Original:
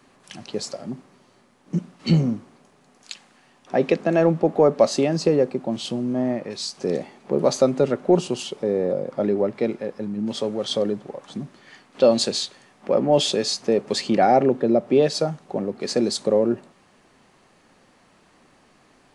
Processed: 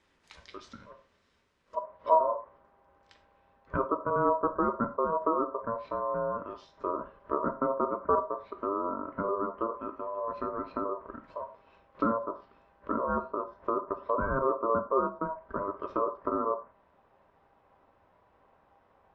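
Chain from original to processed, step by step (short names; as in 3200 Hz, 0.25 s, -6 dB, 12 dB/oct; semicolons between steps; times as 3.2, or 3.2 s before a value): treble ducked by the level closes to 470 Hz, closed at -18.5 dBFS; tilt +4 dB/oct, from 1.76 s -2.5 dB/oct; ring modulator 800 Hz; tape spacing loss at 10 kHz 24 dB; non-linear reverb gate 0.13 s falling, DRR 7 dB; gain -7.5 dB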